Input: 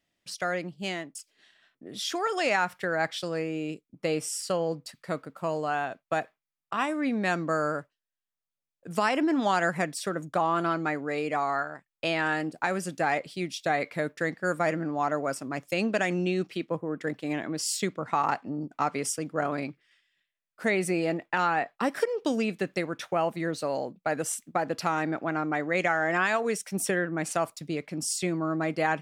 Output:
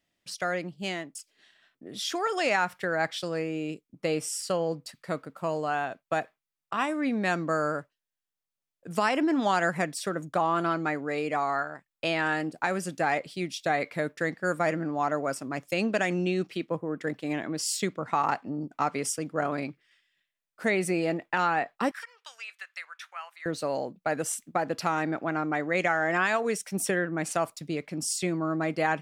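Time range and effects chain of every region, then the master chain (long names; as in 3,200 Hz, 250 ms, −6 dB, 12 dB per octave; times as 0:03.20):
0:21.91–0:23.46: high-pass filter 1,300 Hz 24 dB per octave + high-shelf EQ 2,500 Hz −8.5 dB
whole clip: no processing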